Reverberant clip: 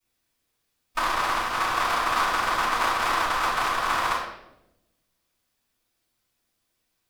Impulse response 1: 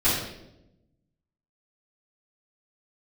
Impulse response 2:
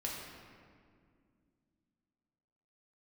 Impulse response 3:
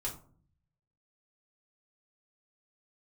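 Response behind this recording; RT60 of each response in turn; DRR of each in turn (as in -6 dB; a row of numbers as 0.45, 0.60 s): 1; 0.90, 2.2, 0.50 s; -14.0, -3.5, -4.5 dB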